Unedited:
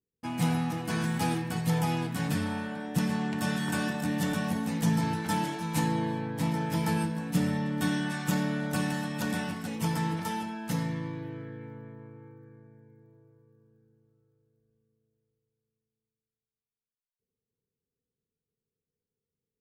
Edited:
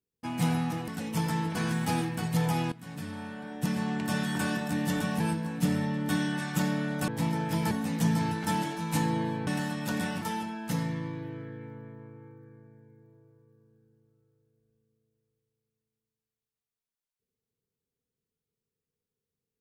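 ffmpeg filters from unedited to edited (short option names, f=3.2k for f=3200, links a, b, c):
-filter_complex "[0:a]asplit=9[a][b][c][d][e][f][g][h][i];[a]atrim=end=0.882[j];[b]atrim=start=9.548:end=10.222[k];[c]atrim=start=0.878:end=2.05,asetpts=PTS-STARTPTS,afade=t=out:st=1.168:d=0.004:c=hsin:silence=0.141254[l];[d]atrim=start=2.05:end=4.532,asetpts=PTS-STARTPTS,afade=t=in:d=1.24:silence=0.141254[m];[e]atrim=start=6.918:end=8.802[n];[f]atrim=start=6.288:end=6.922[o];[g]atrim=start=4.528:end=6.292[p];[h]atrim=start=8.798:end=9.552[q];[i]atrim=start=10.218[r];[j][k]acrossfade=d=0.004:c1=hsin:c2=hsin[s];[l][m]concat=n=2:v=0:a=1[t];[s][t]acrossfade=d=0.004:c1=hsin:c2=hsin[u];[u][n]acrossfade=d=0.004:c1=hsin:c2=hsin[v];[v][o]acrossfade=d=0.004:c1=hsin:c2=hsin[w];[w][p]acrossfade=d=0.004:c1=hsin:c2=hsin[x];[x][q]acrossfade=d=0.004:c1=hsin:c2=hsin[y];[y][r]acrossfade=d=0.004:c1=hsin:c2=hsin"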